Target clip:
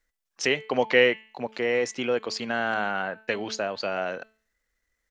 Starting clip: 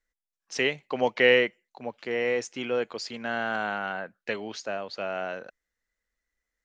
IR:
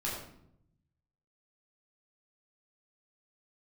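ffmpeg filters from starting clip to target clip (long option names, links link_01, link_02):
-filter_complex "[0:a]bandreject=frequency=219.3:width_type=h:width=4,bandreject=frequency=438.6:width_type=h:width=4,bandreject=frequency=657.9:width_type=h:width=4,bandreject=frequency=877.2:width_type=h:width=4,bandreject=frequency=1096.5:width_type=h:width=4,bandreject=frequency=1315.8:width_type=h:width=4,bandreject=frequency=1535.1:width_type=h:width=4,bandreject=frequency=1754.4:width_type=h:width=4,bandreject=frequency=1973.7:width_type=h:width=4,bandreject=frequency=2193:width_type=h:width=4,bandreject=frequency=2412.3:width_type=h:width=4,bandreject=frequency=2631.6:width_type=h:width=4,bandreject=frequency=2850.9:width_type=h:width=4,bandreject=frequency=3070.2:width_type=h:width=4,bandreject=frequency=3289.5:width_type=h:width=4,bandreject=frequency=3508.8:width_type=h:width=4,bandreject=frequency=3728.1:width_type=h:width=4,bandreject=frequency=3947.4:width_type=h:width=4,bandreject=frequency=4166.7:width_type=h:width=4,bandreject=frequency=4386:width_type=h:width=4,bandreject=frequency=4605.3:width_type=h:width=4,asplit=2[link_01][link_02];[link_02]acompressor=threshold=-35dB:ratio=6,volume=1.5dB[link_03];[link_01][link_03]amix=inputs=2:normalize=0,atempo=1.3"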